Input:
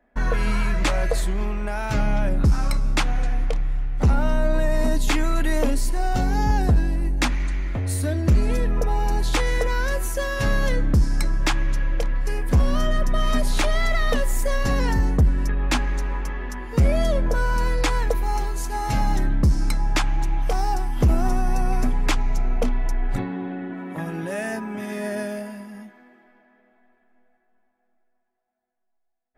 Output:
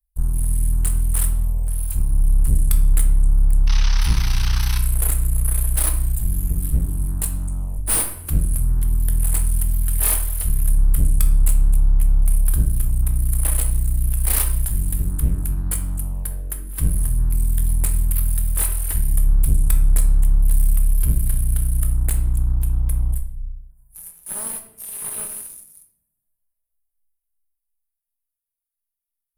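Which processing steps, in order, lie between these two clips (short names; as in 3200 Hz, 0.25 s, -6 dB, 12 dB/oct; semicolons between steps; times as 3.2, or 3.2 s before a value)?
inverse Chebyshev band-stop 120–5500 Hz, stop band 40 dB; resonant high shelf 6500 Hz +13.5 dB, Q 1.5; sample leveller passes 2; painted sound noise, 3.67–4.78, 790–6300 Hz -30 dBFS; one-sided clip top -28 dBFS, bottom -9 dBFS; shoebox room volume 190 m³, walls mixed, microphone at 0.58 m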